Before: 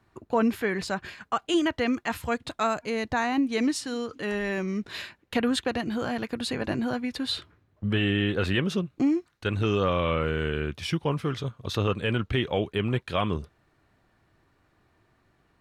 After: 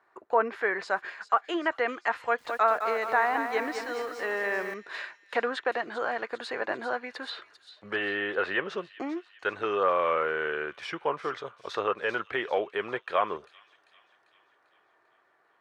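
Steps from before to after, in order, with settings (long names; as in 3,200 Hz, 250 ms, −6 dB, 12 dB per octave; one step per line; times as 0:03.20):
meter weighting curve A
treble cut that deepens with the level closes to 2,600 Hz, closed at −22.5 dBFS
flat-topped bell 850 Hz +12 dB 2.8 octaves
delay with a high-pass on its return 395 ms, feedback 55%, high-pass 4,500 Hz, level −8 dB
0:02.17–0:04.74: feedback echo at a low word length 211 ms, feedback 55%, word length 7 bits, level −7 dB
level −8.5 dB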